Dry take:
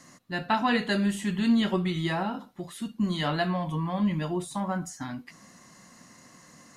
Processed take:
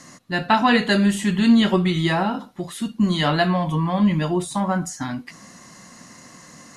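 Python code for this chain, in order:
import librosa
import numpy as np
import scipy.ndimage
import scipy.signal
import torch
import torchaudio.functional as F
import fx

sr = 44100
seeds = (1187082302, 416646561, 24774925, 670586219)

y = scipy.signal.sosfilt(scipy.signal.cheby1(4, 1.0, 12000.0, 'lowpass', fs=sr, output='sos'), x)
y = y * librosa.db_to_amplitude(9.0)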